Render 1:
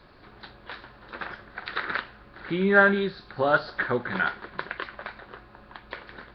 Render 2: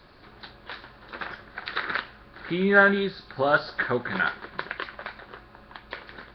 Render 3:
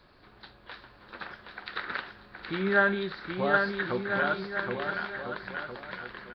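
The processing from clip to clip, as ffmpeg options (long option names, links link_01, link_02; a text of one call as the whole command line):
ffmpeg -i in.wav -af "highshelf=frequency=4100:gain=6" out.wav
ffmpeg -i in.wav -af "aecho=1:1:770|1348|1781|2105|2349:0.631|0.398|0.251|0.158|0.1,volume=-6dB" out.wav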